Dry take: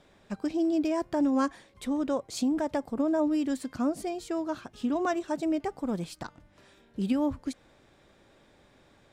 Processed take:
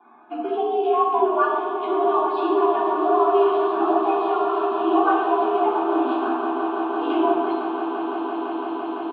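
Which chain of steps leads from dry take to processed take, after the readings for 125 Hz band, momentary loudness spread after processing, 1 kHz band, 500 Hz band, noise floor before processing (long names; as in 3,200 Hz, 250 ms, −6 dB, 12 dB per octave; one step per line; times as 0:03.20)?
below −15 dB, 8 LU, +17.5 dB, +13.0 dB, −62 dBFS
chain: spectral magnitudes quantised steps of 30 dB
double-tracking delay 13 ms −2.5 dB
in parallel at 0 dB: downward compressor, threshold −37 dBFS, peak gain reduction 16.5 dB
on the sum: low-pass that shuts in the quiet parts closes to 1,300 Hz, open at −26 dBFS
high-shelf EQ 2,300 Hz −8.5 dB
mains-hum notches 60/120/180/240/300/360/420/480/540 Hz
echo that builds up and dies away 169 ms, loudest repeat 8, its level −13 dB
rectangular room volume 1,400 cubic metres, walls mixed, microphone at 3.1 metres
single-sideband voice off tune +91 Hz 170–3,200 Hz
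phaser with its sweep stopped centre 1,900 Hz, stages 6
level +4.5 dB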